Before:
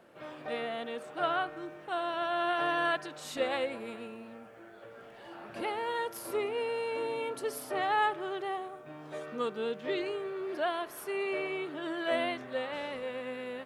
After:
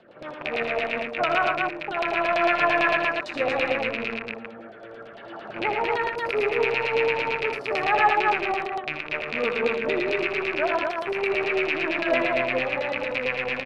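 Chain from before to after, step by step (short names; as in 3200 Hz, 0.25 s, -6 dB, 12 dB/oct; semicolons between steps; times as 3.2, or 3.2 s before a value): rattling part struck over -49 dBFS, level -21 dBFS; LFO low-pass saw down 8.9 Hz 580–4600 Hz; rotary speaker horn 6.3 Hz; 0.63–1.61 expander -35 dBFS; on a send: tapped delay 62/81/116/236 ms -16.5/-7.5/-8/-3 dB; on the sum: dynamic EQ 3200 Hz, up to -7 dB, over -46 dBFS, Q 2.5; gain +6.5 dB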